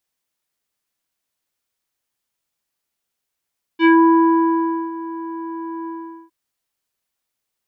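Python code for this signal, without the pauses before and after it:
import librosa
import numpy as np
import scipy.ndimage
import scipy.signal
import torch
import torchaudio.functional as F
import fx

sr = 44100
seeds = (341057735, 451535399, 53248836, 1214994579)

y = fx.sub_voice(sr, note=64, wave='square', cutoff_hz=1200.0, q=1.9, env_oct=1.5, env_s=0.19, attack_ms=60.0, decay_s=1.06, sustain_db=-18.0, release_s=0.43, note_s=2.08, slope=24)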